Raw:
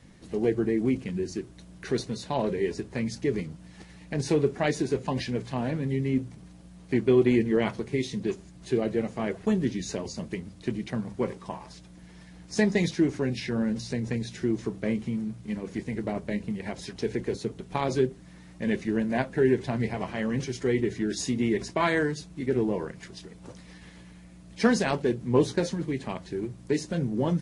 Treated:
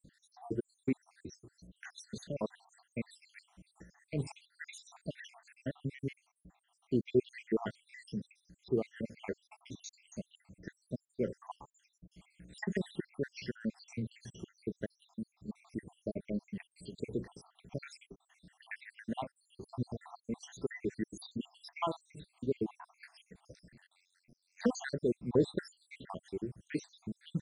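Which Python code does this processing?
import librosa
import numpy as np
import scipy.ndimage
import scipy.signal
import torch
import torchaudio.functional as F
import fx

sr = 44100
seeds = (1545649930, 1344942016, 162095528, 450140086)

y = fx.spec_dropout(x, sr, seeds[0], share_pct=79)
y = fx.ring_mod(y, sr, carrier_hz=45.0, at=(23.69, 24.64), fade=0.02)
y = y * librosa.db_to_amplitude(-5.5)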